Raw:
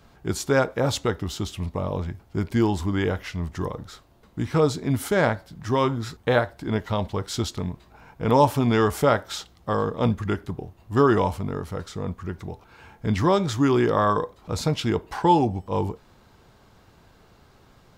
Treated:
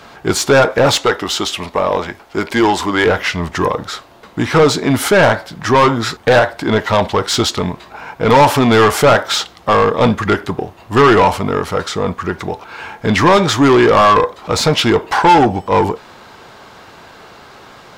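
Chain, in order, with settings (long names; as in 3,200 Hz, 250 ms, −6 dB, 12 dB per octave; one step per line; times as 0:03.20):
0:00.96–0:03.06: parametric band 110 Hz −12.5 dB 1.8 octaves
mid-hump overdrive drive 23 dB, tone 3,800 Hz, clips at −5.5 dBFS
level +4.5 dB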